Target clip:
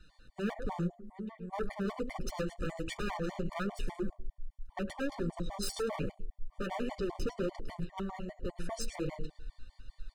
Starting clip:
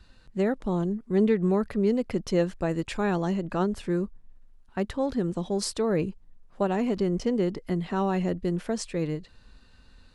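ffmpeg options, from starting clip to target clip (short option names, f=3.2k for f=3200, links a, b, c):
-filter_complex "[0:a]flanger=delay=6.2:depth=5:regen=9:speed=1.3:shape=sinusoidal,asoftclip=type=tanh:threshold=-22.5dB,aecho=1:1:105:0.237,asplit=3[a][b][c];[a]afade=t=out:st=0.87:d=0.02[d];[b]acompressor=threshold=-38dB:ratio=12,afade=t=in:st=0.87:d=0.02,afade=t=out:st=1.52:d=0.02[e];[c]afade=t=in:st=1.52:d=0.02[f];[d][e][f]amix=inputs=3:normalize=0,asubboost=boost=6:cutoff=73,asplit=3[g][h][i];[g]afade=t=out:st=7.84:d=0.02[j];[h]agate=range=-33dB:threshold=-25dB:ratio=3:detection=peak,afade=t=in:st=7.84:d=0.02,afade=t=out:st=8.56:d=0.02[k];[i]afade=t=in:st=8.56:d=0.02[l];[j][k][l]amix=inputs=3:normalize=0,aeval=exprs='0.0376*(abs(mod(val(0)/0.0376+3,4)-2)-1)':c=same,bandreject=f=46.46:t=h:w=4,bandreject=f=92.92:t=h:w=4,bandreject=f=139.38:t=h:w=4,bandreject=f=185.84:t=h:w=4,bandreject=f=232.3:t=h:w=4,bandreject=f=278.76:t=h:w=4,bandreject=f=325.22:t=h:w=4,bandreject=f=371.68:t=h:w=4,bandreject=f=418.14:t=h:w=4,bandreject=f=464.6:t=h:w=4,bandreject=f=511.06:t=h:w=4,bandreject=f=557.52:t=h:w=4,bandreject=f=603.98:t=h:w=4,bandreject=f=650.44:t=h:w=4,bandreject=f=696.9:t=h:w=4,bandreject=f=743.36:t=h:w=4,bandreject=f=789.82:t=h:w=4,afftfilt=real='re*gt(sin(2*PI*5*pts/sr)*(1-2*mod(floor(b*sr/1024/600),2)),0)':imag='im*gt(sin(2*PI*5*pts/sr)*(1-2*mod(floor(b*sr/1024/600),2)),0)':win_size=1024:overlap=0.75,volume=2dB"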